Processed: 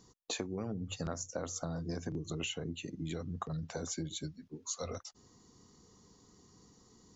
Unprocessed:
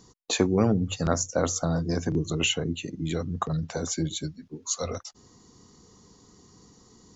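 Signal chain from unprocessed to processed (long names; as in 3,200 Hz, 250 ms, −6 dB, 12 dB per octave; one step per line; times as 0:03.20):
downward compressor 12 to 1, threshold −27 dBFS, peak gain reduction 11.5 dB
level −7 dB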